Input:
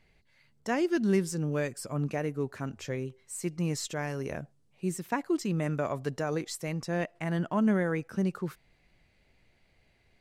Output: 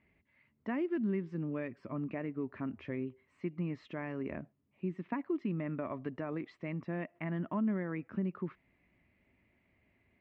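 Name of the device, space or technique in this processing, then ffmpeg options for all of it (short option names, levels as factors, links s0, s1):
bass amplifier: -af "acompressor=threshold=0.0282:ratio=3,highpass=83,equalizer=f=140:t=q:w=4:g=-8,equalizer=f=260:t=q:w=4:g=4,equalizer=f=480:t=q:w=4:g=-9,equalizer=f=780:t=q:w=4:g=-8,equalizer=f=1500:t=q:w=4:g=-8,lowpass=f=2300:w=0.5412,lowpass=f=2300:w=1.3066"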